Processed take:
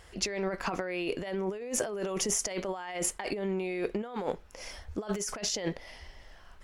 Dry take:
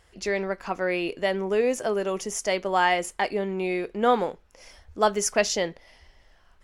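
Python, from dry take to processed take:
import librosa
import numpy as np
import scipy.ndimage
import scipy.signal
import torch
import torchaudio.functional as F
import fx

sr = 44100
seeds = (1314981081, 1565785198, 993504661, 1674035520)

y = fx.over_compress(x, sr, threshold_db=-33.0, ratio=-1.0)
y = y * librosa.db_to_amplitude(-1.0)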